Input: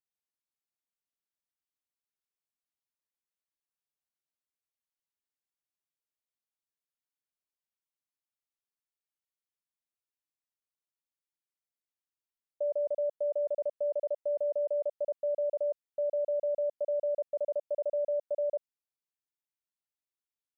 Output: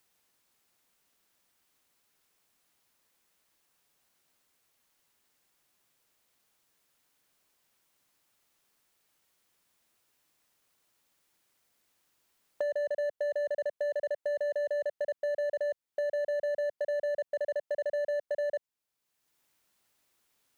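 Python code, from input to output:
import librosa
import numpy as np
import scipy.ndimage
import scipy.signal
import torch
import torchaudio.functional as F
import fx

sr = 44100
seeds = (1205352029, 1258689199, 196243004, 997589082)

y = np.clip(x, -10.0 ** (-30.0 / 20.0), 10.0 ** (-30.0 / 20.0))
y = fx.band_squash(y, sr, depth_pct=70)
y = y * librosa.db_to_amplitude(1.5)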